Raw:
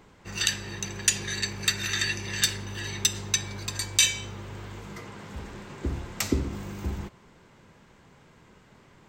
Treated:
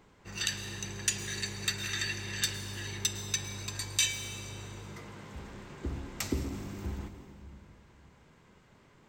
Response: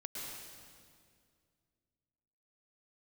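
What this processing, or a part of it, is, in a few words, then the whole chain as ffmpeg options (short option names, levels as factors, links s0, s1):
saturated reverb return: -filter_complex "[0:a]asplit=2[s0][s1];[1:a]atrim=start_sample=2205[s2];[s1][s2]afir=irnorm=-1:irlink=0,asoftclip=type=tanh:threshold=0.0531,volume=0.668[s3];[s0][s3]amix=inputs=2:normalize=0,volume=0.376"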